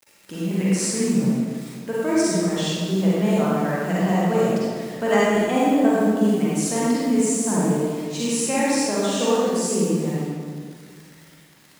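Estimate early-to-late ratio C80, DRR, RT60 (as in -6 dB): -2.0 dB, -8.5 dB, 1.9 s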